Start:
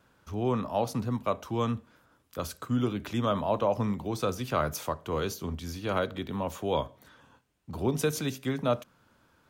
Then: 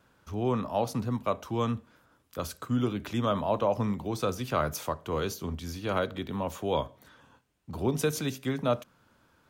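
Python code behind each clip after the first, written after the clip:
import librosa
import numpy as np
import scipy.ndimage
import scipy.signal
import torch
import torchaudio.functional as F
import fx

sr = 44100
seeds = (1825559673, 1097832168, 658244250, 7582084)

y = x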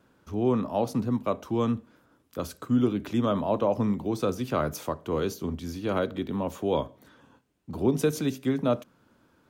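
y = fx.peak_eq(x, sr, hz=290.0, db=8.0, octaves=1.8)
y = y * 10.0 ** (-2.0 / 20.0)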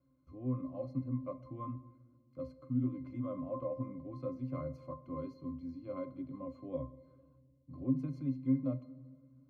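y = fx.octave_resonator(x, sr, note='C', decay_s=0.19)
y = fx.room_shoebox(y, sr, seeds[0], volume_m3=2000.0, walls='mixed', distance_m=0.31)
y = y * 10.0 ** (-1.5 / 20.0)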